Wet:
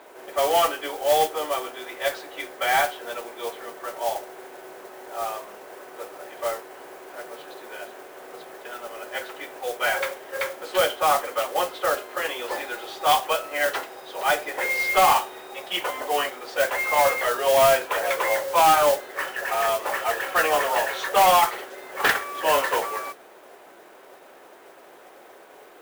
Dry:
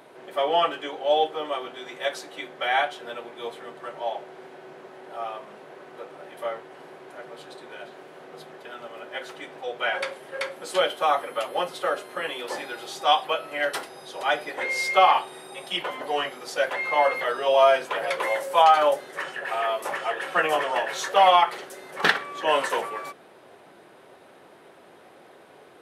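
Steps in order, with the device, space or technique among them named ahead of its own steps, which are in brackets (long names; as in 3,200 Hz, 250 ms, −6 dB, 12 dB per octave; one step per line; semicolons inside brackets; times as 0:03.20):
carbon microphone (band-pass filter 340–3,300 Hz; soft clipping −15 dBFS, distortion −13 dB; noise that follows the level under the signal 12 dB)
level +3.5 dB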